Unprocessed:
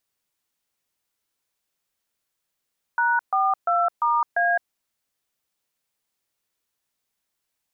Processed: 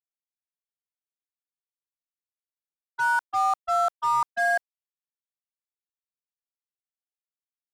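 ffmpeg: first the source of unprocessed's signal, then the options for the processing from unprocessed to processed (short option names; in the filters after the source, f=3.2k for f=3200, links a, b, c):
-f lavfi -i "aevalsrc='0.0944*clip(min(mod(t,0.346),0.212-mod(t,0.346))/0.002,0,1)*(eq(floor(t/0.346),0)*(sin(2*PI*941*mod(t,0.346))+sin(2*PI*1477*mod(t,0.346)))+eq(floor(t/0.346),1)*(sin(2*PI*770*mod(t,0.346))+sin(2*PI*1209*mod(t,0.346)))+eq(floor(t/0.346),2)*(sin(2*PI*697*mod(t,0.346))+sin(2*PI*1336*mod(t,0.346)))+eq(floor(t/0.346),3)*(sin(2*PI*941*mod(t,0.346))+sin(2*PI*1209*mod(t,0.346)))+eq(floor(t/0.346),4)*(sin(2*PI*697*mod(t,0.346))+sin(2*PI*1633*mod(t,0.346))))':d=1.73:s=44100"
-filter_complex "[0:a]agate=range=-33dB:threshold=-15dB:ratio=3:detection=peak,asplit=2[a][b];[b]acrusher=bits=4:mix=0:aa=0.5,volume=-5dB[c];[a][c]amix=inputs=2:normalize=0"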